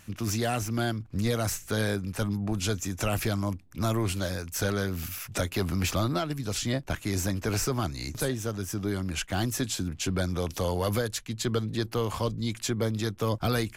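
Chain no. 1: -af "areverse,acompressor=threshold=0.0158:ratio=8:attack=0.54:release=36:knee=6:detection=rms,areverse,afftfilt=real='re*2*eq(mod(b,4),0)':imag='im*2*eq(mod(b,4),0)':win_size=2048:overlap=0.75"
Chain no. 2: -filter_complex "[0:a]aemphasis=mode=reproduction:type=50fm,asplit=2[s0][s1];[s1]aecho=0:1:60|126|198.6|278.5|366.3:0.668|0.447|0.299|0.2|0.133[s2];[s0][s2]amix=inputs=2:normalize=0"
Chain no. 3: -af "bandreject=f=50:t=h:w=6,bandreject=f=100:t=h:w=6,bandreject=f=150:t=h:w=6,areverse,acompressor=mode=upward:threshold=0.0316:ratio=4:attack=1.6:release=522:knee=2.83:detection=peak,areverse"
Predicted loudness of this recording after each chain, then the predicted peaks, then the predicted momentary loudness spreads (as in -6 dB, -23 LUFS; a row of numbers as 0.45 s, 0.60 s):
-43.5 LUFS, -28.0 LUFS, -30.0 LUFS; -29.0 dBFS, -12.5 dBFS, -15.0 dBFS; 5 LU, 4 LU, 4 LU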